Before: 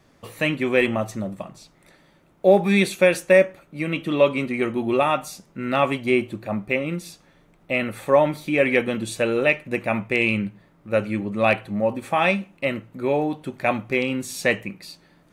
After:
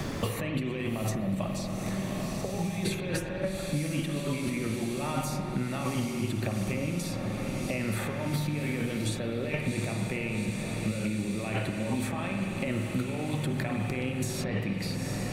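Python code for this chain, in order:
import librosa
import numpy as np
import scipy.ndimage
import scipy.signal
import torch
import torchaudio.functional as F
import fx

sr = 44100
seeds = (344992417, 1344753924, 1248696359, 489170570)

p1 = fx.low_shelf(x, sr, hz=200.0, db=11.5)
p2 = fx.over_compress(p1, sr, threshold_db=-29.0, ratio=-1.0)
p3 = p2 + fx.echo_diffused(p2, sr, ms=751, feedback_pct=69, wet_db=-11.0, dry=0)
p4 = fx.rev_spring(p3, sr, rt60_s=2.0, pass_ms=(47,), chirp_ms=75, drr_db=3.5)
p5 = fx.band_squash(p4, sr, depth_pct=100)
y = p5 * 10.0 ** (-5.5 / 20.0)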